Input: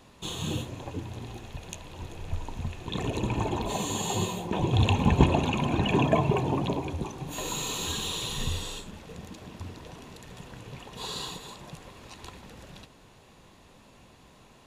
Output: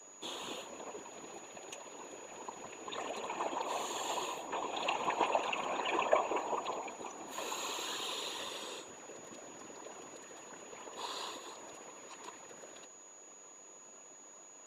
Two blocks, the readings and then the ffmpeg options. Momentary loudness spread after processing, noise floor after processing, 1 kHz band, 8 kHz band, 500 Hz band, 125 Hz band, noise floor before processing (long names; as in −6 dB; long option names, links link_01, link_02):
18 LU, −55 dBFS, −3.5 dB, −6.0 dB, −6.5 dB, −35.5 dB, −55 dBFS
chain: -filter_complex "[0:a]highpass=frequency=330:width=0.5412,highpass=frequency=330:width=1.3066,highshelf=frequency=2800:gain=-11,bandreject=frequency=820:width=15,acrossover=split=530[link_01][link_02];[link_01]acompressor=threshold=-50dB:ratio=10[link_03];[link_03][link_02]amix=inputs=2:normalize=0,afftfilt=real='hypot(re,im)*cos(2*PI*random(0))':imag='hypot(re,im)*sin(2*PI*random(1))':win_size=512:overlap=0.75,aeval=exprs='val(0)+0.00112*sin(2*PI*6800*n/s)':channel_layout=same,volume=5.5dB"